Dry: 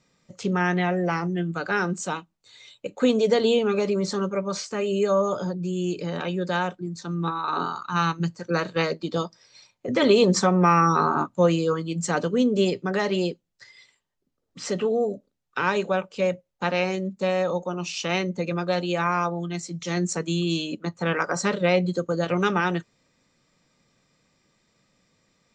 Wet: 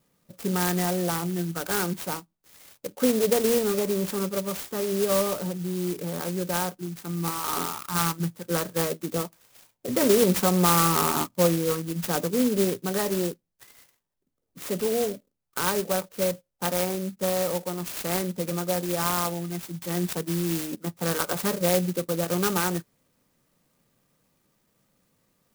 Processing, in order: sampling jitter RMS 0.11 ms; trim -2 dB

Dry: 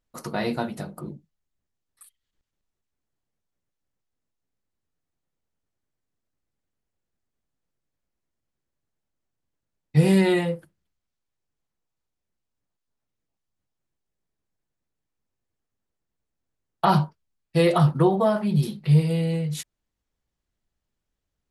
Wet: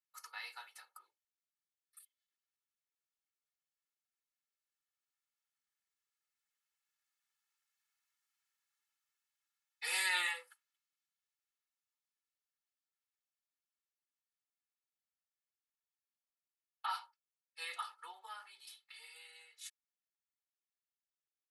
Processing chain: Doppler pass-by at 8.08 s, 7 m/s, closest 9 m; high-pass 1.2 kHz 24 dB/octave; comb 2.3 ms, depth 90%; trim +2.5 dB

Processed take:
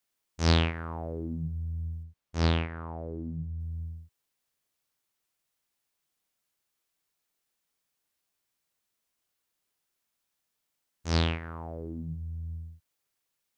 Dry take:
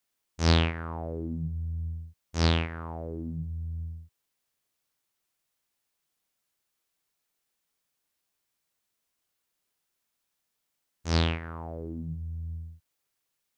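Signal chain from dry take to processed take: 2.03–3.60 s: treble shelf 4.2 kHz -8.5 dB; trim -1 dB

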